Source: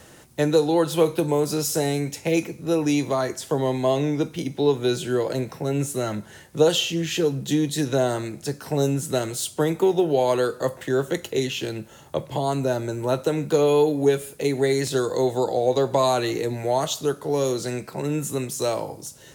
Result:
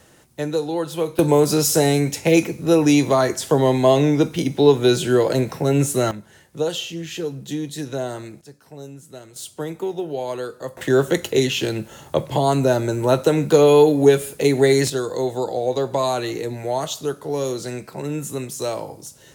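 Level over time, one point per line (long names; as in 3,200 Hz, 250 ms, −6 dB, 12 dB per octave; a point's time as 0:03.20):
−4 dB
from 0:01.19 +6.5 dB
from 0:06.11 −5 dB
from 0:08.41 −15.5 dB
from 0:09.36 −6.5 dB
from 0:10.77 +6 dB
from 0:14.90 −1 dB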